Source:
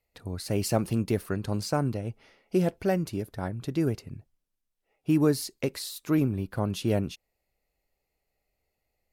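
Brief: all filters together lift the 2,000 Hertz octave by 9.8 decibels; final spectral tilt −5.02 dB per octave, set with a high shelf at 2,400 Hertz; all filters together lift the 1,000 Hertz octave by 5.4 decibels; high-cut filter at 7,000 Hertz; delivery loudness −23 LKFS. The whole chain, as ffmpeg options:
ffmpeg -i in.wav -af "lowpass=7000,equalizer=frequency=1000:width_type=o:gain=4.5,equalizer=frequency=2000:width_type=o:gain=8.5,highshelf=frequency=2400:gain=6,volume=4.5dB" out.wav

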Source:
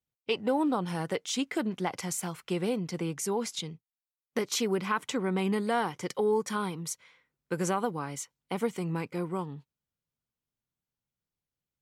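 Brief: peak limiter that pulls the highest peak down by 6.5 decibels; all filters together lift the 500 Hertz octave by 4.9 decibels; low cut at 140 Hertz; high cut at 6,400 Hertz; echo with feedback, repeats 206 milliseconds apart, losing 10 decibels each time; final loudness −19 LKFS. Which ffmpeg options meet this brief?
ffmpeg -i in.wav -af "highpass=140,lowpass=6400,equalizer=frequency=500:width_type=o:gain=6,alimiter=limit=-18.5dB:level=0:latency=1,aecho=1:1:206|412|618|824:0.316|0.101|0.0324|0.0104,volume=11.5dB" out.wav

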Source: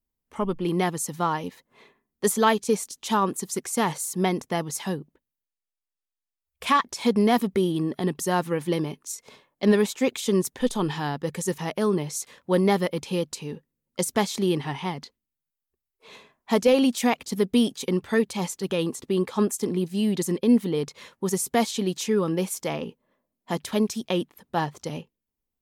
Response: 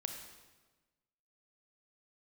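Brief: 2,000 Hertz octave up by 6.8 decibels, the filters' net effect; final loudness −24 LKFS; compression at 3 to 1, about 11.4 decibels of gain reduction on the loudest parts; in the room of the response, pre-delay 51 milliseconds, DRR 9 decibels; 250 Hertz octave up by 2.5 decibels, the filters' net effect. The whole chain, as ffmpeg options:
-filter_complex "[0:a]equalizer=frequency=250:width_type=o:gain=3,equalizer=frequency=2000:width_type=o:gain=8,acompressor=threshold=-28dB:ratio=3,asplit=2[link_01][link_02];[1:a]atrim=start_sample=2205,adelay=51[link_03];[link_02][link_03]afir=irnorm=-1:irlink=0,volume=-8dB[link_04];[link_01][link_04]amix=inputs=2:normalize=0,volume=6.5dB"

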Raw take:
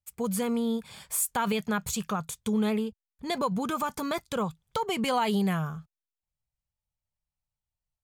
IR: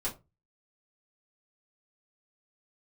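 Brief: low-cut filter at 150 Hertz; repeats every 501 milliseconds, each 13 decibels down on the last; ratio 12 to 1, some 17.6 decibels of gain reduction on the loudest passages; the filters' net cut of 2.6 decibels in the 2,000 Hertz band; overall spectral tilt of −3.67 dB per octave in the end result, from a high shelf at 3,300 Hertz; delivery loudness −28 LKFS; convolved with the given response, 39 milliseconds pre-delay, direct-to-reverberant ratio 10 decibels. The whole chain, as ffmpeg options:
-filter_complex "[0:a]highpass=150,equalizer=frequency=2000:width_type=o:gain=-6.5,highshelf=frequency=3300:gain=9,acompressor=threshold=-34dB:ratio=12,aecho=1:1:501|1002|1503:0.224|0.0493|0.0108,asplit=2[link_01][link_02];[1:a]atrim=start_sample=2205,adelay=39[link_03];[link_02][link_03]afir=irnorm=-1:irlink=0,volume=-13.5dB[link_04];[link_01][link_04]amix=inputs=2:normalize=0,volume=9.5dB"

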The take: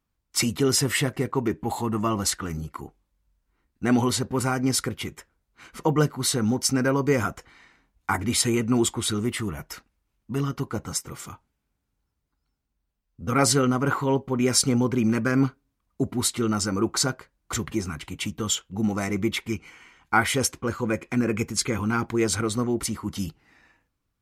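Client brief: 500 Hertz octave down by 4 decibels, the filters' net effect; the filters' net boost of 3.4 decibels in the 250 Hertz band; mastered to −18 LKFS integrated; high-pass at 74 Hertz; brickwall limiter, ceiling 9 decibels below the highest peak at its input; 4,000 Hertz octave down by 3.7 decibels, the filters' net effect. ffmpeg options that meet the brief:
ffmpeg -i in.wav -af "highpass=74,equalizer=frequency=250:width_type=o:gain=6,equalizer=frequency=500:width_type=o:gain=-8.5,equalizer=frequency=4000:width_type=o:gain=-5,volume=9dB,alimiter=limit=-7dB:level=0:latency=1" out.wav

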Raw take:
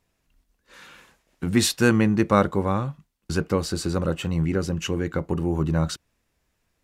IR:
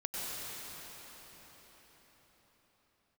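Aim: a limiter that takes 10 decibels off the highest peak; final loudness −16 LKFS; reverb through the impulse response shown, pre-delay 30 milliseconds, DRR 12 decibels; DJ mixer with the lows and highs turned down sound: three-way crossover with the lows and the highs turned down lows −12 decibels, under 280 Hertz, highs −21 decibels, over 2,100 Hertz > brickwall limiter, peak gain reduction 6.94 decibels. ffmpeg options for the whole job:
-filter_complex "[0:a]alimiter=limit=-13.5dB:level=0:latency=1,asplit=2[link_01][link_02];[1:a]atrim=start_sample=2205,adelay=30[link_03];[link_02][link_03]afir=irnorm=-1:irlink=0,volume=-16.5dB[link_04];[link_01][link_04]amix=inputs=2:normalize=0,acrossover=split=280 2100:gain=0.251 1 0.0891[link_05][link_06][link_07];[link_05][link_06][link_07]amix=inputs=3:normalize=0,volume=17dB,alimiter=limit=-3.5dB:level=0:latency=1"

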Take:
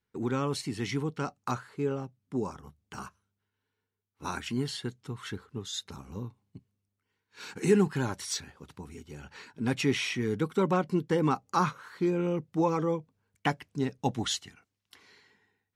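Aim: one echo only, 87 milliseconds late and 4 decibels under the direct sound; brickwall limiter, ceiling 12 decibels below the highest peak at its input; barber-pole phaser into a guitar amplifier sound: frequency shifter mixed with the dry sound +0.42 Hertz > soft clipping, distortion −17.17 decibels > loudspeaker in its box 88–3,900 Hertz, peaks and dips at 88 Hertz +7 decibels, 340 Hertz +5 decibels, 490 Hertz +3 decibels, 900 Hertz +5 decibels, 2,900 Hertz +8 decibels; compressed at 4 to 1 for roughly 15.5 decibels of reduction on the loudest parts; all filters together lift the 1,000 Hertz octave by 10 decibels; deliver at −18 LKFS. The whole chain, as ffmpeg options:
ffmpeg -i in.wav -filter_complex "[0:a]equalizer=frequency=1000:width_type=o:gain=8.5,acompressor=threshold=-35dB:ratio=4,alimiter=level_in=7dB:limit=-24dB:level=0:latency=1,volume=-7dB,aecho=1:1:87:0.631,asplit=2[link_01][link_02];[link_02]afreqshift=0.42[link_03];[link_01][link_03]amix=inputs=2:normalize=1,asoftclip=threshold=-36.5dB,highpass=88,equalizer=frequency=88:width_type=q:width=4:gain=7,equalizer=frequency=340:width_type=q:width=4:gain=5,equalizer=frequency=490:width_type=q:width=4:gain=3,equalizer=frequency=900:width_type=q:width=4:gain=5,equalizer=frequency=2900:width_type=q:width=4:gain=8,lowpass=frequency=3900:width=0.5412,lowpass=frequency=3900:width=1.3066,volume=25.5dB" out.wav

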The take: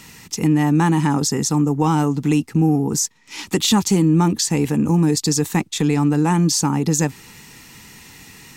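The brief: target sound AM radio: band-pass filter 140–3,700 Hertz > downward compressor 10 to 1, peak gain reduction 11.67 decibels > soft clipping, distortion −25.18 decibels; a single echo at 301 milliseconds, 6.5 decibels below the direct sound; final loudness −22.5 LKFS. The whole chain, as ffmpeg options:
ffmpeg -i in.wav -af "highpass=140,lowpass=3700,aecho=1:1:301:0.473,acompressor=threshold=-22dB:ratio=10,asoftclip=threshold=-14.5dB,volume=5dB" out.wav

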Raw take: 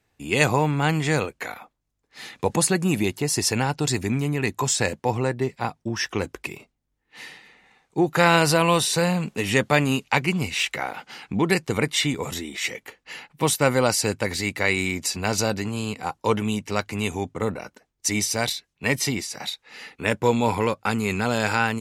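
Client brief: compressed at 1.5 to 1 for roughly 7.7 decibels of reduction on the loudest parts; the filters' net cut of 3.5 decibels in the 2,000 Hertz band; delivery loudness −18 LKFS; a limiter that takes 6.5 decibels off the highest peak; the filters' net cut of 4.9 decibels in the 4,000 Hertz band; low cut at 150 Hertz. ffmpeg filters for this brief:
ffmpeg -i in.wav -af "highpass=150,equalizer=frequency=2000:width_type=o:gain=-3,equalizer=frequency=4000:width_type=o:gain=-5.5,acompressor=threshold=-37dB:ratio=1.5,volume=14dB,alimiter=limit=-3.5dB:level=0:latency=1" out.wav

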